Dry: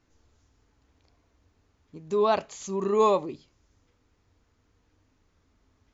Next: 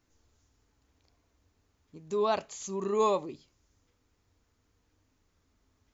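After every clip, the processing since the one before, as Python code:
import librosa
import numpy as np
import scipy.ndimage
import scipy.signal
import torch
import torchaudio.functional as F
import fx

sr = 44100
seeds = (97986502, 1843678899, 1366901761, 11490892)

y = fx.high_shelf(x, sr, hz=6300.0, db=9.5)
y = y * librosa.db_to_amplitude(-5.0)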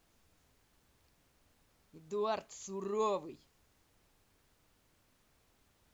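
y = fx.dmg_noise_colour(x, sr, seeds[0], colour='pink', level_db=-65.0)
y = y * librosa.db_to_amplitude(-7.0)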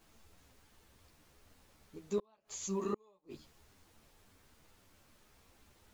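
y = fx.gate_flip(x, sr, shuts_db=-29.0, range_db=-40)
y = fx.ensemble(y, sr)
y = y * librosa.db_to_amplitude(9.0)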